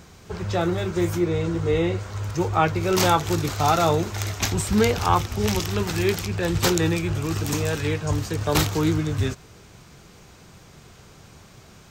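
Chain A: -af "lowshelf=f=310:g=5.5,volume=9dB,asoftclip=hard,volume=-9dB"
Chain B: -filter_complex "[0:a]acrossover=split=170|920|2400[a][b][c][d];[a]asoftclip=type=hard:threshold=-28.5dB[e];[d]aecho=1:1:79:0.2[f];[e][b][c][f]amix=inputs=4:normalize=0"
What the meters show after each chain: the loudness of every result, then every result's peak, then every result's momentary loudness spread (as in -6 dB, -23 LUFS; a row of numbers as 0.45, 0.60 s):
-20.5, -23.5 LUFS; -9.0, -4.0 dBFS; 5, 7 LU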